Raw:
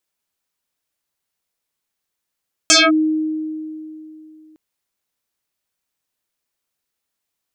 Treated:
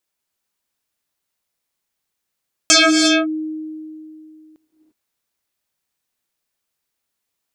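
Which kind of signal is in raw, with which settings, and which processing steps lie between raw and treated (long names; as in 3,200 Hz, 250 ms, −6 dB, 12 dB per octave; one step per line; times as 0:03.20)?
two-operator FM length 1.86 s, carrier 312 Hz, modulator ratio 3.09, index 8.3, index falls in 0.21 s linear, decay 2.95 s, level −7 dB
reverb whose tail is shaped and stops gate 370 ms rising, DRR 4 dB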